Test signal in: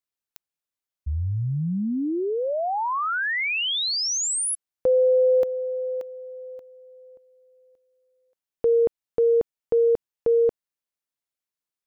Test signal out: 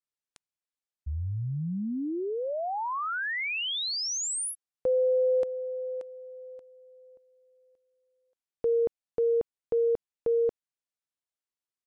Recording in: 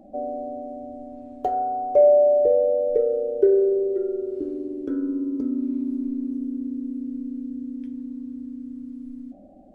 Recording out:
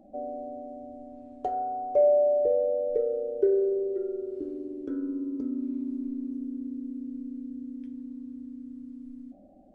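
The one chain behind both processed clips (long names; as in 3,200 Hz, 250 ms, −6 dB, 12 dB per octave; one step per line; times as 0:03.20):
downsampling to 22,050 Hz
level −6 dB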